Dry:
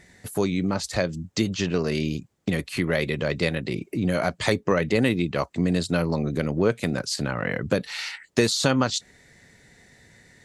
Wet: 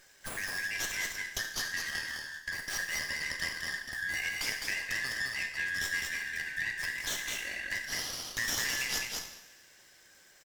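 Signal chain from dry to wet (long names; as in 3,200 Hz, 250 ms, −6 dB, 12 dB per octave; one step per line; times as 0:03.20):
band-splitting scrambler in four parts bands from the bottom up 2143
first-order pre-emphasis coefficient 0.97
reverb reduction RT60 0.79 s
dynamic equaliser 5,600 Hz, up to +4 dB, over −46 dBFS, Q 1.2
downward compressor 2.5 to 1, threshold −39 dBFS, peak gain reduction 11.5 dB
on a send: single-tap delay 208 ms −3.5 dB
on the sum: coupled-rooms reverb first 0.83 s, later 3.1 s, from −20 dB, DRR 2 dB
windowed peak hold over 3 samples
level +3 dB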